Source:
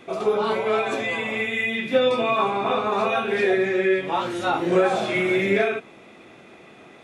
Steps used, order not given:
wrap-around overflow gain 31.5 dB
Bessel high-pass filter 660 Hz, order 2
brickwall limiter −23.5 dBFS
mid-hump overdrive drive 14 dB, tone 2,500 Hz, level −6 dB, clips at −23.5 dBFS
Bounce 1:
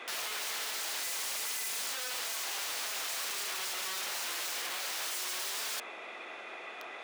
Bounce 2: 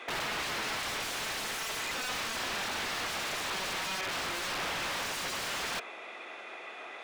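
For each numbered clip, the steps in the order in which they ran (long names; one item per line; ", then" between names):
brickwall limiter, then mid-hump overdrive, then wrap-around overflow, then Bessel high-pass filter
Bessel high-pass filter, then brickwall limiter, then wrap-around overflow, then mid-hump overdrive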